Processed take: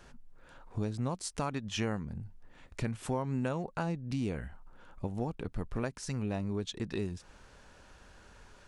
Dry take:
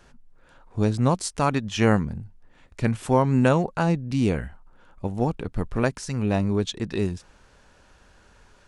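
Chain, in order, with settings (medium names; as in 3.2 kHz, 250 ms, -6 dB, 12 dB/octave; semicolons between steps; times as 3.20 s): compression 3:1, threshold -33 dBFS, peak gain reduction 15 dB; trim -1 dB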